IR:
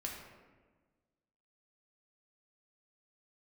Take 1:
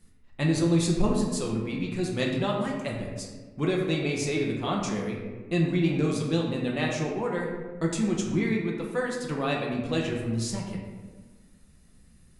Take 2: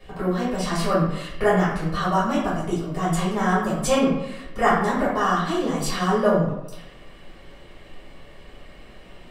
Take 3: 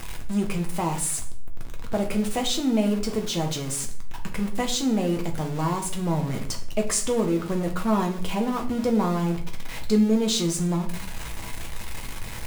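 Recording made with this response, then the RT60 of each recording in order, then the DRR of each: 1; 1.4, 0.90, 0.55 s; -1.5, -10.5, 2.0 dB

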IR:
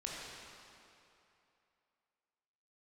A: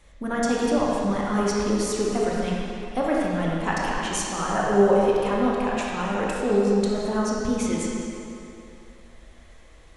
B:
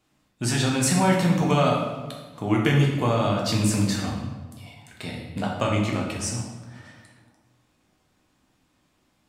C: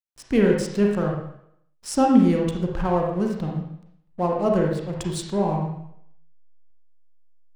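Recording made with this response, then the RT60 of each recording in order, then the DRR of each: A; 2.8, 1.4, 0.70 s; -4.5, -2.0, -0.5 dB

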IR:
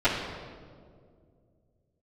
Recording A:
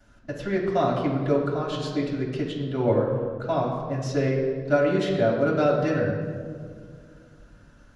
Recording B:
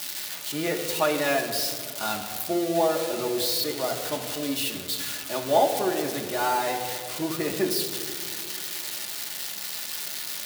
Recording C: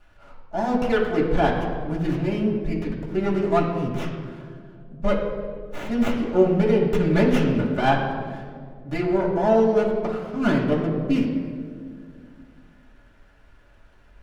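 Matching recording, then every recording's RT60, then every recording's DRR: A; 2.1, 2.1, 2.1 s; -17.5, 0.0, -9.5 dB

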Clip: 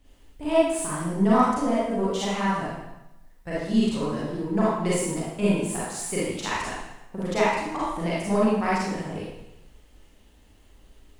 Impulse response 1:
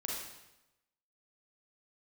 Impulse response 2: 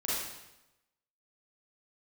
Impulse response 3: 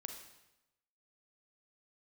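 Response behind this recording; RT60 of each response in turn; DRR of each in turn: 2; 0.95, 0.95, 0.95 s; -3.5, -9.0, 4.0 dB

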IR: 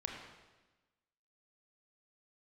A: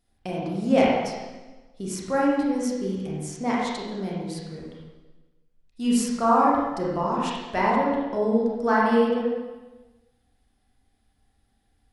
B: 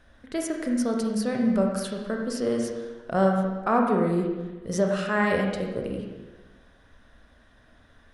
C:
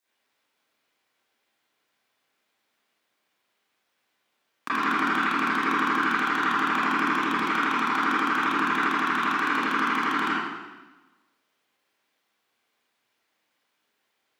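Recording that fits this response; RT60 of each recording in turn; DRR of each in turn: B; 1.2, 1.2, 1.2 s; -5.5, 0.5, -15.0 dB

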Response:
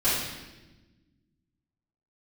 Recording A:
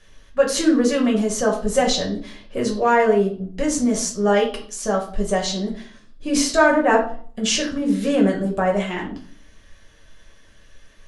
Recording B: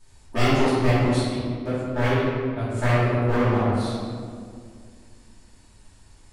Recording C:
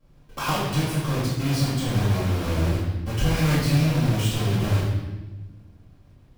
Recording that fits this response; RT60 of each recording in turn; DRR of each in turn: C; 0.50, 2.1, 1.1 s; -2.0, -14.0, -13.5 dB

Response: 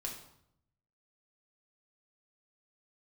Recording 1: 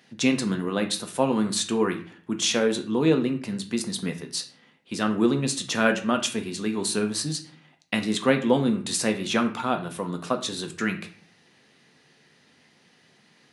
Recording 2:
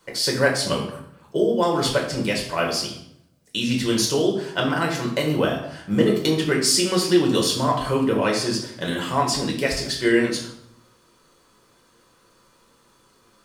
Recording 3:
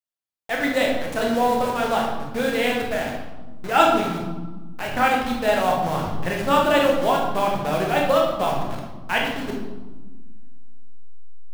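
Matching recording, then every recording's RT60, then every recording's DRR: 2; 0.45, 0.70, 1.3 s; 5.0, -1.0, -1.5 dB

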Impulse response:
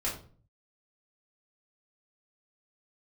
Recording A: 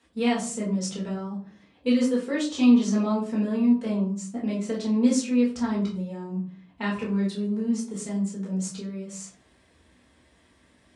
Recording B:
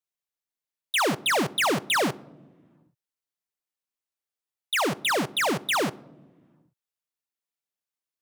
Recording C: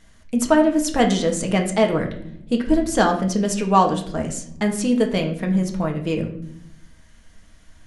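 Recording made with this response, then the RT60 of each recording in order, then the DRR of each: A; 0.45, 1.3, 0.70 s; -5.5, 18.0, 2.0 dB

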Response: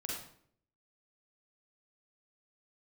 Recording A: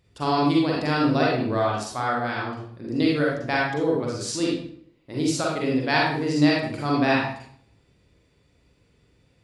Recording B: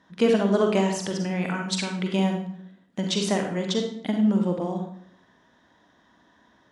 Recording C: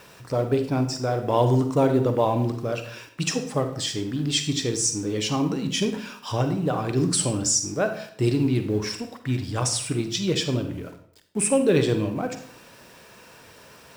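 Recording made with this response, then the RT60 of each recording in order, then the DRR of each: A; 0.60, 0.60, 0.60 s; -4.0, 2.5, 7.5 dB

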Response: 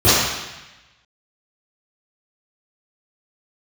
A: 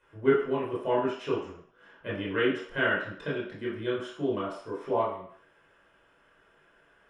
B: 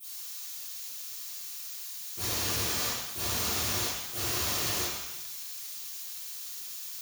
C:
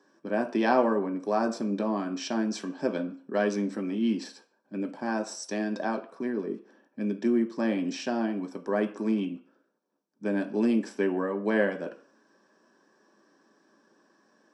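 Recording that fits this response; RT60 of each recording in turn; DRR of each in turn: B; 0.60, 1.0, 0.45 s; -6.5, -16.5, 3.5 dB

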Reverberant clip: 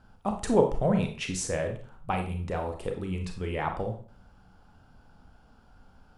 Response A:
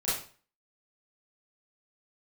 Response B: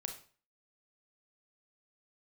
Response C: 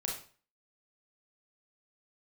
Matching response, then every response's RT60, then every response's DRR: B; 0.40, 0.40, 0.40 s; -11.5, 4.0, -1.5 dB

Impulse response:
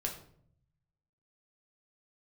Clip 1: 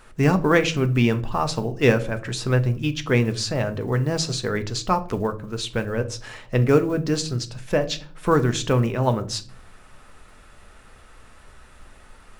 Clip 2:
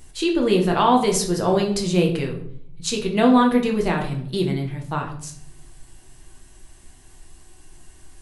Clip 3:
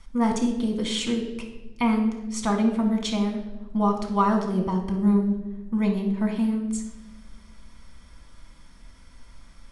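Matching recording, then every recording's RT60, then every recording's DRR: 2; 0.45, 0.60, 1.1 s; 8.0, 0.5, 1.5 dB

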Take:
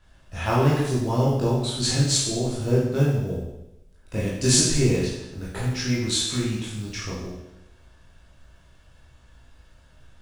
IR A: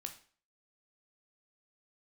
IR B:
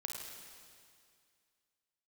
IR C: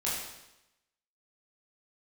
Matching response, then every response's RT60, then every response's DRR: C; 0.45, 2.2, 0.90 s; 5.0, -0.5, -7.5 dB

